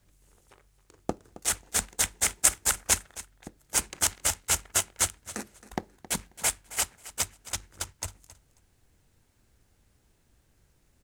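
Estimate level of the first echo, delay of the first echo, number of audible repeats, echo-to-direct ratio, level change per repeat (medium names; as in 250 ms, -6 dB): -17.0 dB, 269 ms, 2, -17.0 dB, -15.5 dB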